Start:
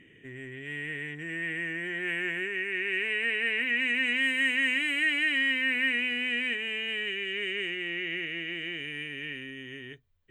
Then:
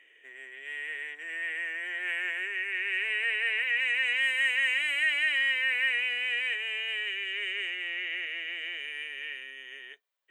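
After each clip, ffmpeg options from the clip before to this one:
ffmpeg -i in.wav -af "highpass=frequency=560:width=0.5412,highpass=frequency=560:width=1.3066" out.wav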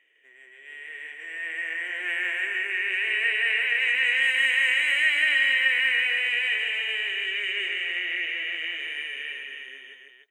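ffmpeg -i in.wav -filter_complex "[0:a]dynaudnorm=framelen=380:gausssize=7:maxgain=9dB,asplit=2[link_01][link_02];[link_02]aecho=0:1:156|295:0.531|0.531[link_03];[link_01][link_03]amix=inputs=2:normalize=0,volume=-6dB" out.wav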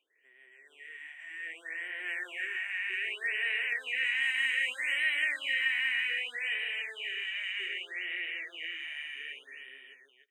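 ffmpeg -i in.wav -filter_complex "[0:a]acrossover=split=940|1500|3000[link_01][link_02][link_03][link_04];[link_01]aeval=exprs='(mod(53.1*val(0)+1,2)-1)/53.1':channel_layout=same[link_05];[link_05][link_02][link_03][link_04]amix=inputs=4:normalize=0,afftfilt=real='re*(1-between(b*sr/1024,400*pow(5900/400,0.5+0.5*sin(2*PI*0.64*pts/sr))/1.41,400*pow(5900/400,0.5+0.5*sin(2*PI*0.64*pts/sr))*1.41))':imag='im*(1-between(b*sr/1024,400*pow(5900/400,0.5+0.5*sin(2*PI*0.64*pts/sr))/1.41,400*pow(5900/400,0.5+0.5*sin(2*PI*0.64*pts/sr))*1.41))':win_size=1024:overlap=0.75,volume=-7.5dB" out.wav

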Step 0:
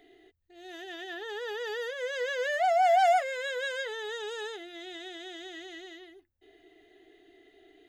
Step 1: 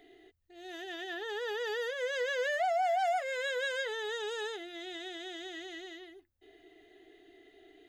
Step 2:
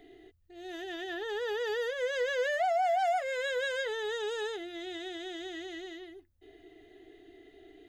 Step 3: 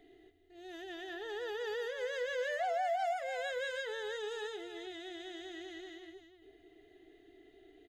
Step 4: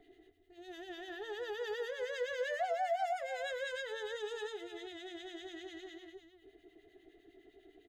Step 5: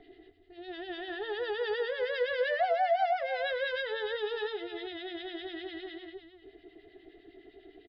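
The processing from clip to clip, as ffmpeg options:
ffmpeg -i in.wav -af "acompressor=threshold=-28dB:ratio=6" out.wav
ffmpeg -i in.wav -af "lowshelf=frequency=300:gain=10.5" out.wav
ffmpeg -i in.wav -af "aecho=1:1:312:0.335,volume=-6dB" out.wav
ffmpeg -i in.wav -filter_complex "[0:a]acrossover=split=1500[link_01][link_02];[link_01]aeval=exprs='val(0)*(1-0.7/2+0.7/2*cos(2*PI*9.9*n/s))':channel_layout=same[link_03];[link_02]aeval=exprs='val(0)*(1-0.7/2-0.7/2*cos(2*PI*9.9*n/s))':channel_layout=same[link_04];[link_03][link_04]amix=inputs=2:normalize=0,volume=2dB" out.wav
ffmpeg -i in.wav -af "aresample=11025,aresample=44100,volume=7dB" out.wav

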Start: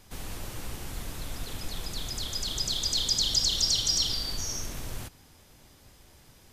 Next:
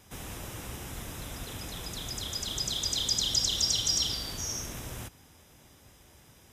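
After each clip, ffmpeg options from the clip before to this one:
ffmpeg -i in.wav -af "highpass=51,bandreject=frequency=4400:width=5.4" out.wav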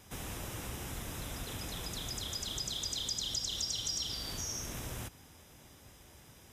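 ffmpeg -i in.wav -af "acompressor=threshold=-37dB:ratio=2.5" out.wav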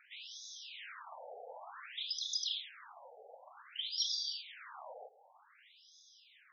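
ffmpeg -i in.wav -af "afftfilt=real='re*between(b*sr/1024,590*pow(4800/590,0.5+0.5*sin(2*PI*0.54*pts/sr))/1.41,590*pow(4800/590,0.5+0.5*sin(2*PI*0.54*pts/sr))*1.41)':imag='im*between(b*sr/1024,590*pow(4800/590,0.5+0.5*sin(2*PI*0.54*pts/sr))/1.41,590*pow(4800/590,0.5+0.5*sin(2*PI*0.54*pts/sr))*1.41)':win_size=1024:overlap=0.75,volume=4dB" out.wav

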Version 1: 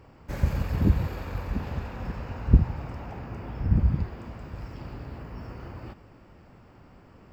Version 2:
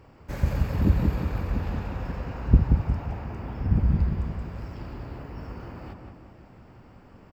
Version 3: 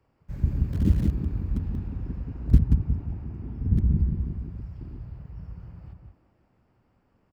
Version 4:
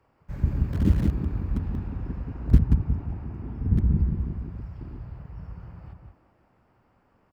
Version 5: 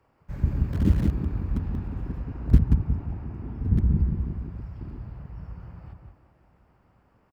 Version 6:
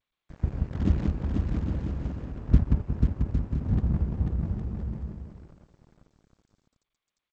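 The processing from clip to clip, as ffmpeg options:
ffmpeg -i in.wav -filter_complex "[0:a]asplit=2[link_01][link_02];[link_02]adelay=180,lowpass=frequency=1800:poles=1,volume=-4dB,asplit=2[link_03][link_04];[link_04]adelay=180,lowpass=frequency=1800:poles=1,volume=0.5,asplit=2[link_05][link_06];[link_06]adelay=180,lowpass=frequency=1800:poles=1,volume=0.5,asplit=2[link_07][link_08];[link_08]adelay=180,lowpass=frequency=1800:poles=1,volume=0.5,asplit=2[link_09][link_10];[link_10]adelay=180,lowpass=frequency=1800:poles=1,volume=0.5,asplit=2[link_11][link_12];[link_12]adelay=180,lowpass=frequency=1800:poles=1,volume=0.5[link_13];[link_01][link_03][link_05][link_07][link_09][link_11][link_13]amix=inputs=7:normalize=0" out.wav
ffmpeg -i in.wav -filter_complex "[0:a]afwtdn=0.0447,acrossover=split=210|440|1200[link_01][link_02][link_03][link_04];[link_03]aeval=exprs='(mod(168*val(0)+1,2)-1)/168':channel_layout=same[link_05];[link_01][link_02][link_05][link_04]amix=inputs=4:normalize=0" out.wav
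ffmpeg -i in.wav -af "equalizer=frequency=1100:width_type=o:width=2.6:gain=7" out.wav
ffmpeg -i in.wav -af "aecho=1:1:1113:0.0668" out.wav
ffmpeg -i in.wav -af "aeval=exprs='sgn(val(0))*max(abs(val(0))-0.0237,0)':channel_layout=same,aecho=1:1:490|808.5|1016|1150|1238:0.631|0.398|0.251|0.158|0.1,volume=-2dB" -ar 16000 -c:a g722 out.g722

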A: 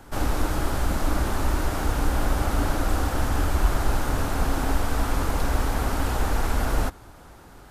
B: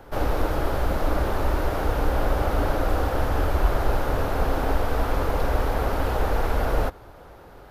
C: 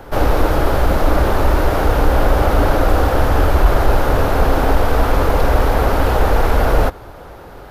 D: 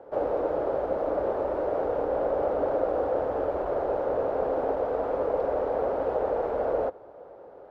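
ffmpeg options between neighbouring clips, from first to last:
ffmpeg -i in.wav -af "equalizer=frequency=250:width_type=o:width=1:gain=-4,equalizer=frequency=500:width_type=o:width=1:gain=8,equalizer=frequency=8000:width_type=o:width=1:gain=-12" out.wav
ffmpeg -i in.wav -af "acontrast=89,volume=2.5dB" out.wav
ffmpeg -i in.wav -af "bandpass=frequency=530:width_type=q:width=2.5:csg=0,volume=-4.5dB" out.wav

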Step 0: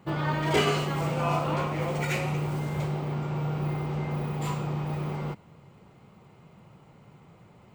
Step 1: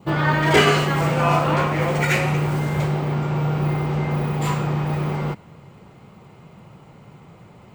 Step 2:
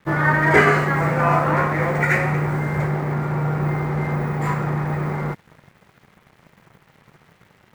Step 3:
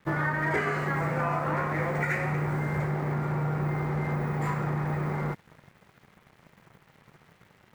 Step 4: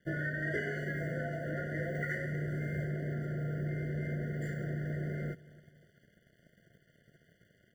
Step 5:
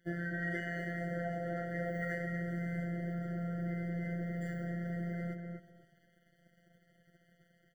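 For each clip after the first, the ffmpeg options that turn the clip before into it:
ffmpeg -i in.wav -af "adynamicequalizer=threshold=0.00447:dfrequency=1700:dqfactor=2.4:tfrequency=1700:tqfactor=2.4:attack=5:release=100:ratio=0.375:range=3:mode=boostabove:tftype=bell,volume=8dB" out.wav
ffmpeg -i in.wav -af "acrusher=bits=7:mix=0:aa=0.000001,highshelf=frequency=2400:width_type=q:width=3:gain=-7.5,aeval=exprs='sgn(val(0))*max(abs(val(0))-0.00631,0)':channel_layout=same" out.wav
ffmpeg -i in.wav -af "acompressor=threshold=-20dB:ratio=6,volume=-4.5dB" out.wav
ffmpeg -i in.wav -filter_complex "[0:a]asplit=2[link_01][link_02];[link_02]adelay=267,lowpass=frequency=2000:poles=1,volume=-21dB,asplit=2[link_03][link_04];[link_04]adelay=267,lowpass=frequency=2000:poles=1,volume=0.46,asplit=2[link_05][link_06];[link_06]adelay=267,lowpass=frequency=2000:poles=1,volume=0.46[link_07];[link_01][link_03][link_05][link_07]amix=inputs=4:normalize=0,afftfilt=real='re*eq(mod(floor(b*sr/1024/710),2),0)':imag='im*eq(mod(floor(b*sr/1024/710),2),0)':win_size=1024:overlap=0.75,volume=-6.5dB" out.wav
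ffmpeg -i in.wav -filter_complex "[0:a]afftfilt=real='hypot(re,im)*cos(PI*b)':imag='0':win_size=1024:overlap=0.75,asplit=2[link_01][link_02];[link_02]adelay=248,lowpass=frequency=1600:poles=1,volume=-4dB,asplit=2[link_03][link_04];[link_04]adelay=248,lowpass=frequency=1600:poles=1,volume=0.22,asplit=2[link_05][link_06];[link_06]adelay=248,lowpass=frequency=1600:poles=1,volume=0.22[link_07];[link_03][link_05][link_07]amix=inputs=3:normalize=0[link_08];[link_01][link_08]amix=inputs=2:normalize=0" out.wav

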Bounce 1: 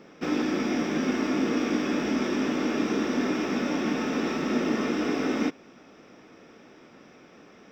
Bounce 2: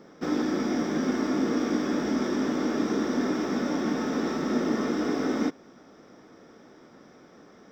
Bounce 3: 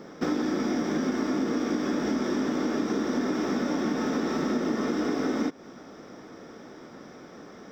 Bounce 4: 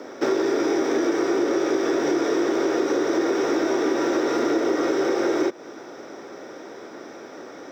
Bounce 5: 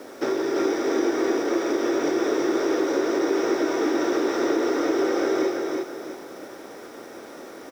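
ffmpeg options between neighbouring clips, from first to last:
ffmpeg -i in.wav -af "equalizer=frequency=2600:width_type=o:width=0.48:gain=-12.5" out.wav
ffmpeg -i in.wav -af "acompressor=threshold=-31dB:ratio=5,volume=6.5dB" out.wav
ffmpeg -i in.wav -filter_complex "[0:a]afreqshift=84,asplit=2[link_01][link_02];[link_02]asoftclip=type=tanh:threshold=-27dB,volume=-8.5dB[link_03];[link_01][link_03]amix=inputs=2:normalize=0,volume=3.5dB" out.wav
ffmpeg -i in.wav -filter_complex "[0:a]aecho=1:1:332|664|996|1328:0.708|0.241|0.0818|0.0278,acrossover=split=3900[link_01][link_02];[link_01]acrusher=bits=7:mix=0:aa=0.000001[link_03];[link_03][link_02]amix=inputs=2:normalize=0,volume=-3dB" out.wav

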